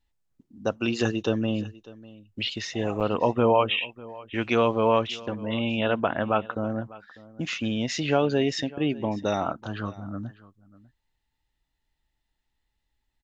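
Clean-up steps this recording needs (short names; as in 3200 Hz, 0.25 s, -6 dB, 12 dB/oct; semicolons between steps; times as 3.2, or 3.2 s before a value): interpolate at 3, 8.3 ms; inverse comb 0.598 s -20.5 dB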